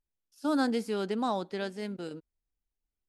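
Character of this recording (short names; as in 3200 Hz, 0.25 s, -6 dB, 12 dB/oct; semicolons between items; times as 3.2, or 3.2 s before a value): noise floor -89 dBFS; spectral tilt -4.0 dB/oct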